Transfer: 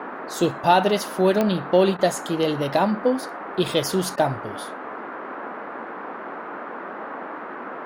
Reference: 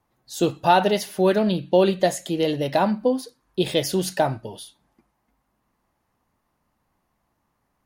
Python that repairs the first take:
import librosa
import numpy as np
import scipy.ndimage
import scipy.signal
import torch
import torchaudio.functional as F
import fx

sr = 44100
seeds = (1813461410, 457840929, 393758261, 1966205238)

y = fx.fix_declick_ar(x, sr, threshold=10.0)
y = fx.fix_interpolate(y, sr, at_s=(1.97, 4.16), length_ms=16.0)
y = fx.noise_reduce(y, sr, print_start_s=5.82, print_end_s=6.32, reduce_db=30.0)